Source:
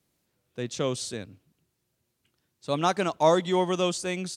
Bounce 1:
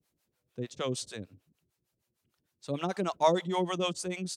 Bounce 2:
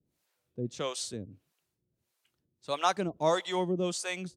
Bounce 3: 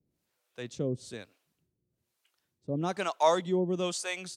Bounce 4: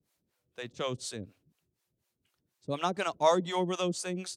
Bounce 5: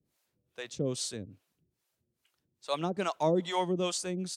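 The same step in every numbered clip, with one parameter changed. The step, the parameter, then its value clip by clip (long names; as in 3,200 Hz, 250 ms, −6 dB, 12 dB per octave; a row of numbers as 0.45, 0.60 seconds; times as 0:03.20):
two-band tremolo in antiphase, speed: 6.6, 1.6, 1.1, 4.1, 2.4 Hertz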